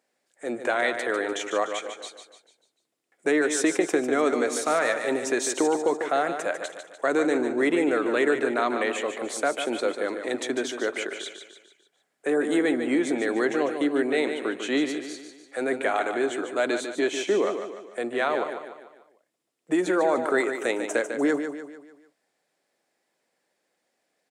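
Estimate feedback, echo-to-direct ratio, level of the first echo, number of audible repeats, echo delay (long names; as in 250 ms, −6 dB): 46%, −7.0 dB, −8.0 dB, 5, 148 ms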